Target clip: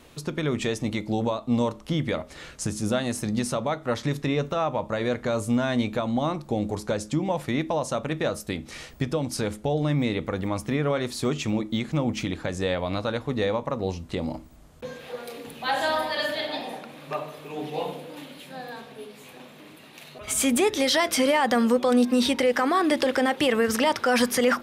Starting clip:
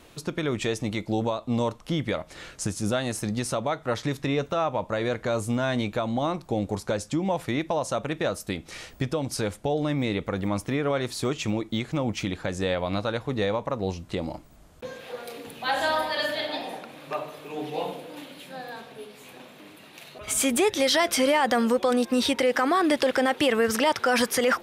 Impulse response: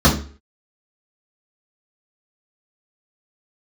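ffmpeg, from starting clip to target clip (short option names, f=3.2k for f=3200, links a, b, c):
-filter_complex "[0:a]asplit=2[a][b];[1:a]atrim=start_sample=2205[c];[b][c]afir=irnorm=-1:irlink=0,volume=-40dB[d];[a][d]amix=inputs=2:normalize=0"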